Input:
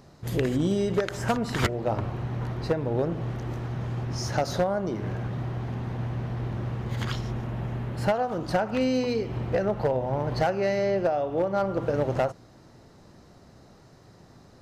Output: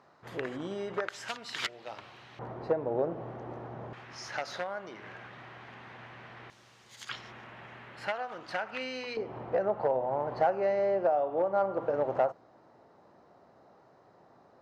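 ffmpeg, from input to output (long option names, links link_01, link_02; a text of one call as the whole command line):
ffmpeg -i in.wav -af "asetnsamples=nb_out_samples=441:pad=0,asendcmd='1.09 bandpass f 3500;2.39 bandpass f 660;3.93 bandpass f 2100;6.5 bandpass f 6900;7.09 bandpass f 2100;9.17 bandpass f 790',bandpass=frequency=1200:width_type=q:width=1.1:csg=0" out.wav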